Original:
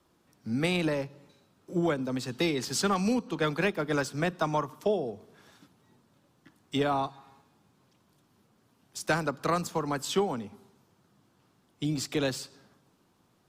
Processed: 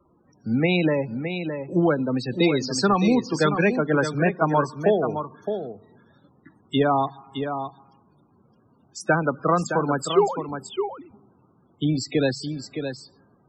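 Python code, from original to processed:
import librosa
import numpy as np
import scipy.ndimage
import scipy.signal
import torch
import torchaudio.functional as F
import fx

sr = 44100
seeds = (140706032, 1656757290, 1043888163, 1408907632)

y = fx.sine_speech(x, sr, at=(10.07, 10.49))
y = fx.spec_topn(y, sr, count=32)
y = y + 10.0 ** (-8.0 / 20.0) * np.pad(y, (int(615 * sr / 1000.0), 0))[:len(y)]
y = F.gain(torch.from_numpy(y), 7.5).numpy()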